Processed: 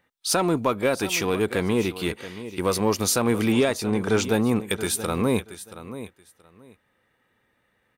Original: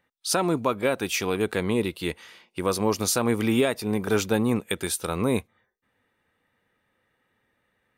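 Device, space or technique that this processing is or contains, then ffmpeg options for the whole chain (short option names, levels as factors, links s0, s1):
parallel distortion: -filter_complex "[0:a]asettb=1/sr,asplit=3[s0][s1][s2];[s0]atrim=end=3.524[s3];[s1]atrim=start=3.52:end=4.24,asetpts=PTS-STARTPTS,afade=t=in:d=0.004:c=qsin,afade=t=out:st=0.716:d=0.004:c=qsin,lowpass=f=8800:w=0.5412,lowpass=f=8800:w=1.3066[s4];[s2]atrim=start=4.236[s5];[s3][s4]acrossfade=d=0.004:c1=hsin:c2=qsin[s6];[s6][s5]acrossfade=d=0.004:c1=qsin:c2=hsin,aecho=1:1:678|1356:0.178|0.0338,asplit=2[s7][s8];[s8]asoftclip=type=hard:threshold=0.0473,volume=0.422[s9];[s7][s9]amix=inputs=2:normalize=0"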